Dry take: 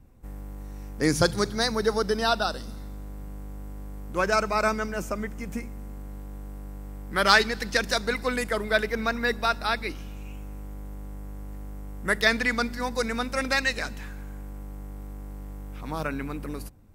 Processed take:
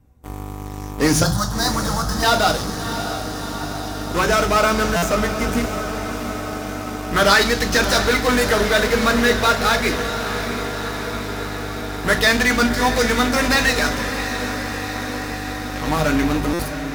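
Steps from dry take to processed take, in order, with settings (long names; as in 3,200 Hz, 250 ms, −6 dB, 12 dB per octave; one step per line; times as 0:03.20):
low-shelf EQ 63 Hz −6 dB
in parallel at −4.5 dB: fuzz pedal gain 38 dB, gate −37 dBFS
0:01.23–0:02.23: on the sum: phaser with its sweep stopped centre 990 Hz, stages 4
feedback delay with all-pass diffusion 664 ms, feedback 74%, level −9.5 dB
on a send at −5 dB: convolution reverb RT60 0.40 s, pre-delay 3 ms
on the sum: buffer that repeats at 0:04.96/0:16.53, samples 256, times 10
level −1.5 dB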